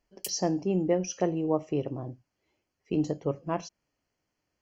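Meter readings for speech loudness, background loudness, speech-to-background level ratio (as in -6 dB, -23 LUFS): -30.0 LUFS, -40.5 LUFS, 10.5 dB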